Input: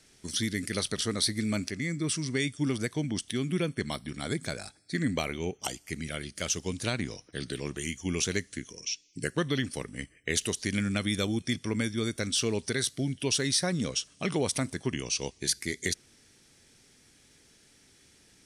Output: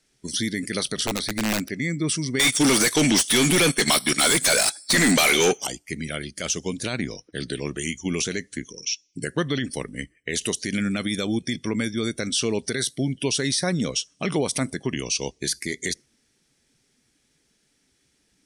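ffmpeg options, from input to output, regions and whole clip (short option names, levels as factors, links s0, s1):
-filter_complex "[0:a]asettb=1/sr,asplit=3[s0][s1][s2];[s0]atrim=end=1.074[s3];[s1]atrim=start=1.07:end=1.7,asetpts=PTS-STARTPTS,afade=t=in:d=0.004:c=qsin,afade=t=out:st=0.626:d=0.004:c=qsin,acrossover=split=2500[s4][s5];[s5]acompressor=threshold=0.0178:ratio=4:attack=1:release=60[s6];[s4][s6]amix=inputs=2:normalize=0,aeval=exprs='(mod(15*val(0)+1,2)-1)/15':c=same[s7];[s2]atrim=start=1.696[s8];[s3][s7]acrossfade=d=0.004:c1=hsin:c2=qsin[s9];[s9][s8]acrossfade=d=0.004:c1=qsin:c2=hsin,asettb=1/sr,asplit=3[s10][s11][s12];[s10]atrim=end=2.394[s13];[s11]atrim=start=2.39:end=5.64,asetpts=PTS-STARTPTS,afade=t=in:d=0.004:c=qsin,afade=t=out:st=3.246:d=0.004:c=qsin,aemphasis=mode=production:type=75fm,asplit=2[s14][s15];[s15]highpass=f=720:p=1,volume=70.8,asoftclip=type=tanh:threshold=0.531[s16];[s14][s16]amix=inputs=2:normalize=0,lowpass=f=5800:p=1,volume=0.501,agate=range=0.126:threshold=0.126:ratio=16:release=100:detection=peak[s17];[s12]atrim=start=5.636[s18];[s13][s17]acrossfade=d=0.004:c1=hsin:c2=qsin[s19];[s19][s18]acrossfade=d=0.004:c1=qsin:c2=hsin,alimiter=limit=0.1:level=0:latency=1:release=31,afftdn=nr=14:nf=-49,equalizer=f=92:t=o:w=0.44:g=-12,volume=2.11"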